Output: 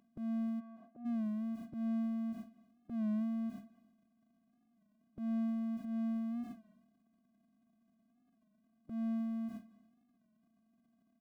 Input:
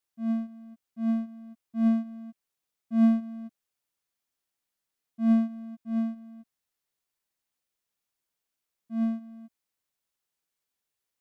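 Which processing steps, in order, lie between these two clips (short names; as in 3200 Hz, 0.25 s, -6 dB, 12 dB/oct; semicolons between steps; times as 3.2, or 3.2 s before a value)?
per-bin compression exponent 0.2; gate with hold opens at -26 dBFS; harmonic-percussive split harmonic -16 dB; transient shaper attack -7 dB, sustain +8 dB; 0.59–1.05 band-pass 1300 Hz -> 470 Hz, Q 1.6; speakerphone echo 0.2 s, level -18 dB; record warp 33 1/3 rpm, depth 100 cents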